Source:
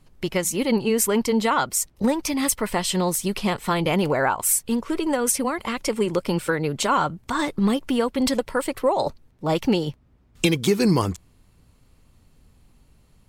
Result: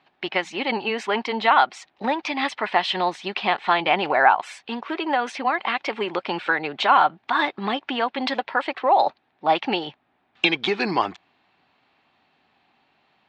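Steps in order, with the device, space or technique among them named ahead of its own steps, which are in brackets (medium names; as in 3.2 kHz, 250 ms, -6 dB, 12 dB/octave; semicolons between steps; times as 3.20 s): phone earpiece (cabinet simulation 430–3800 Hz, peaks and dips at 490 Hz -9 dB, 770 Hz +9 dB, 1.7 kHz +5 dB, 2.5 kHz +4 dB, 3.7 kHz +4 dB); trim +2.5 dB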